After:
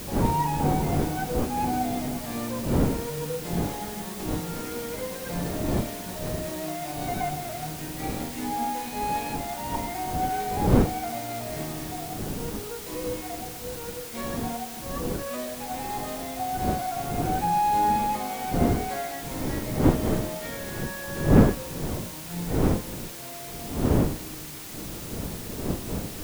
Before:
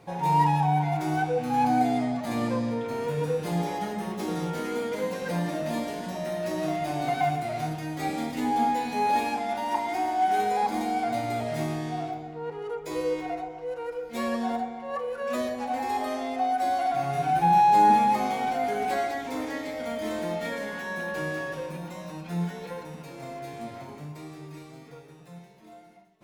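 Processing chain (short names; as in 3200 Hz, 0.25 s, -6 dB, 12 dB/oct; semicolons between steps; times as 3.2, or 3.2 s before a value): wind noise 300 Hz -25 dBFS; requantised 6-bit, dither triangular; gain -4.5 dB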